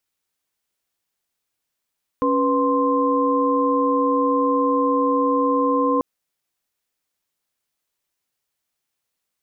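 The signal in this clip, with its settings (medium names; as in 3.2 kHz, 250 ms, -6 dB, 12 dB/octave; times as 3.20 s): chord C#4/B4/C6 sine, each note -20.5 dBFS 3.79 s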